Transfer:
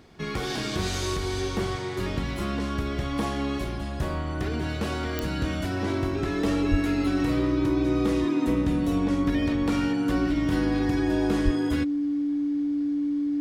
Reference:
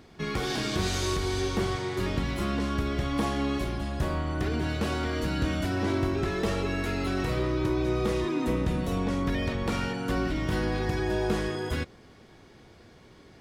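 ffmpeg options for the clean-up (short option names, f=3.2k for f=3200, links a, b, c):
-filter_complex "[0:a]adeclick=t=4,bandreject=f=290:w=30,asplit=3[a][b][c];[a]afade=t=out:st=6.7:d=0.02[d];[b]highpass=f=140:w=0.5412,highpass=f=140:w=1.3066,afade=t=in:st=6.7:d=0.02,afade=t=out:st=6.82:d=0.02[e];[c]afade=t=in:st=6.82:d=0.02[f];[d][e][f]amix=inputs=3:normalize=0,asplit=3[g][h][i];[g]afade=t=out:st=11.44:d=0.02[j];[h]highpass=f=140:w=0.5412,highpass=f=140:w=1.3066,afade=t=in:st=11.44:d=0.02,afade=t=out:st=11.56:d=0.02[k];[i]afade=t=in:st=11.56:d=0.02[l];[j][k][l]amix=inputs=3:normalize=0"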